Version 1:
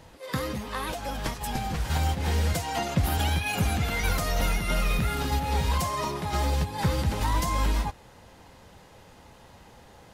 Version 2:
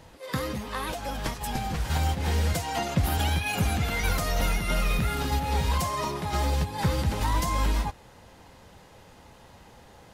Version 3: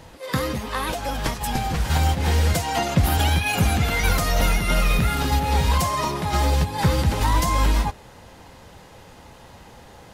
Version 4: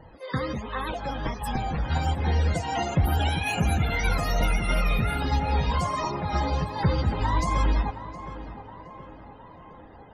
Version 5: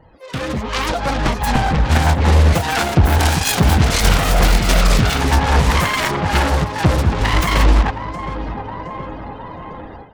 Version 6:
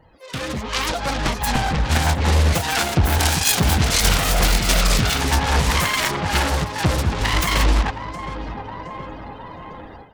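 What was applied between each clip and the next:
nothing audible
de-hum 206.1 Hz, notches 3; gain +6 dB
loudest bins only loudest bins 64; flange 1.3 Hz, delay 0.1 ms, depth 8.6 ms, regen -62%; tape echo 0.716 s, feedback 64%, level -10.5 dB, low-pass 1800 Hz
self-modulated delay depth 0.95 ms; AGC gain up to 15 dB
high shelf 2500 Hz +8 dB; gain -5 dB

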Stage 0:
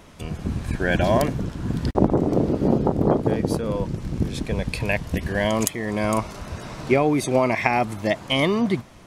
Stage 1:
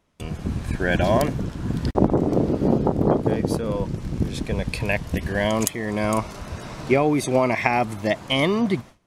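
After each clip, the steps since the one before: gate with hold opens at -35 dBFS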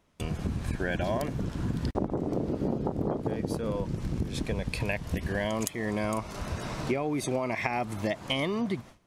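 compressor 5:1, threshold -27 dBFS, peak gain reduction 14.5 dB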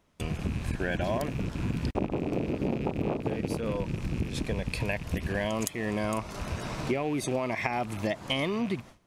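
rattling part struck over -36 dBFS, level -34 dBFS

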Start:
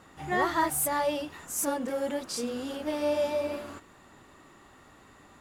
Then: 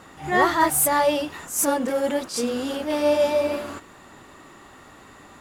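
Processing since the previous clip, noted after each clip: low shelf 160 Hz -3.5 dB; attack slew limiter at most 150 dB/s; gain +8.5 dB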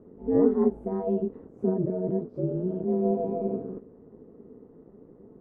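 synth low-pass 350 Hz, resonance Q 4.2; bell 61 Hz -6.5 dB 1.5 oct; ring modulator 92 Hz; gain -3 dB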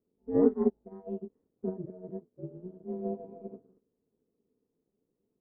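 upward expander 2.5:1, over -37 dBFS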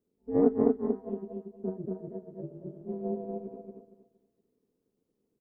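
on a send: feedback echo 0.234 s, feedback 26%, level -3 dB; on the sum: Doppler distortion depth 0.14 ms

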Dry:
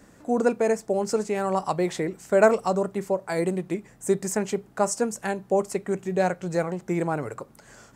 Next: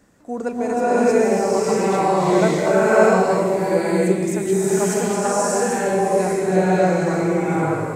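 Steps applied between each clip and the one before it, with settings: bloom reverb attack 0.62 s, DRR -11.5 dB; gain -4 dB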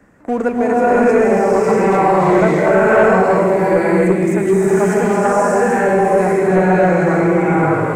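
sample leveller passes 2; resonant high shelf 2800 Hz -9.5 dB, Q 1.5; three-band squash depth 40%; gain -2 dB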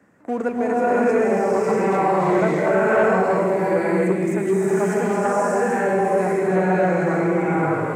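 HPF 110 Hz 12 dB/oct; gain -6 dB

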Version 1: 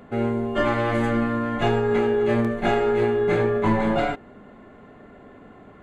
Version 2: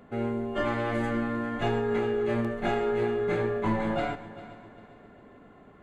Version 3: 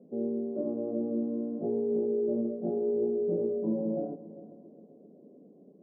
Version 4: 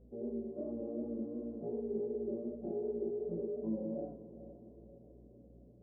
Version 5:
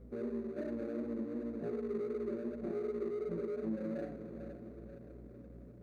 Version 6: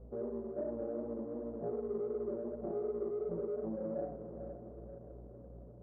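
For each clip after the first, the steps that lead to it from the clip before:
multi-head echo 0.133 s, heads first and third, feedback 54%, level -17 dB; gain -6.5 dB
elliptic band-pass 170–550 Hz, stop band 60 dB
hum 60 Hz, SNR 21 dB; chorus 2.7 Hz, delay 17.5 ms, depth 6.6 ms; diffused feedback echo 0.485 s, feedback 52%, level -15 dB; gain -5.5 dB
median filter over 41 samples; compressor 2:1, threshold -46 dBFS, peak gain reduction 7.5 dB; gain +6.5 dB
ladder low-pass 1000 Hz, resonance 40%; bell 260 Hz -8 dB 1.1 oct; gain +10.5 dB

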